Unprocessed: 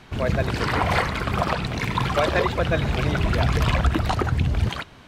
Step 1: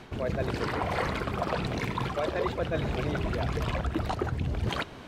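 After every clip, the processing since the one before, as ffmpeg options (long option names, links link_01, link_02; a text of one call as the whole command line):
ffmpeg -i in.wav -af "equalizer=frequency=420:width_type=o:width=1.9:gain=6.5,areverse,acompressor=threshold=-27dB:ratio=6,areverse" out.wav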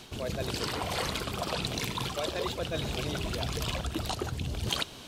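ffmpeg -i in.wav -af "aexciter=amount=5.1:drive=3.4:freq=2800,volume=-4dB" out.wav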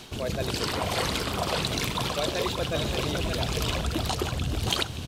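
ffmpeg -i in.wav -af "aecho=1:1:574:0.473,volume=4dB" out.wav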